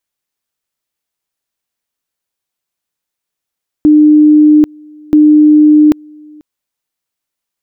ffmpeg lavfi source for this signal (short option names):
-f lavfi -i "aevalsrc='pow(10,(-2-30*gte(mod(t,1.28),0.79))/20)*sin(2*PI*302*t)':d=2.56:s=44100"